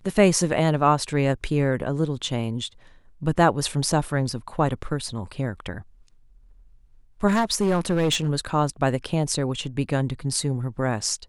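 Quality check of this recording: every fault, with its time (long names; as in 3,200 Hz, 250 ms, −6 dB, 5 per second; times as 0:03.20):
0:07.27–0:08.30: clipping −17 dBFS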